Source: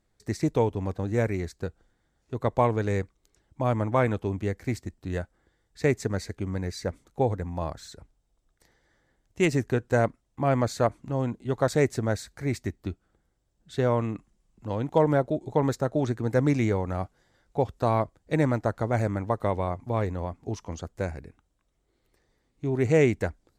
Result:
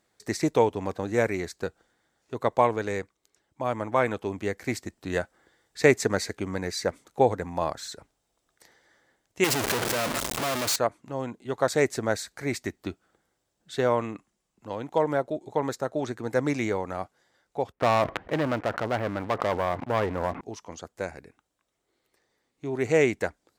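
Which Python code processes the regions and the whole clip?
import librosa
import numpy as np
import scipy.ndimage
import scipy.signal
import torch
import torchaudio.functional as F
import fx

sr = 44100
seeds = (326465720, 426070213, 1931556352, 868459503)

y = fx.chain(x, sr, fx.clip_1bit(),
    fx.notch(hz=750.0, q=22.0), at=(9.44, 10.76))
y = fx.chain(y, sr, fx.lowpass(hz=2400.0, slope=24),
    fx.leveller(passes=3),
    fx.sustainer(db_per_s=52.0), at=(17.72, 20.41))
y = fx.highpass(y, sr, hz=470.0, slope=6)
y = fx.rider(y, sr, range_db=10, speed_s=2.0)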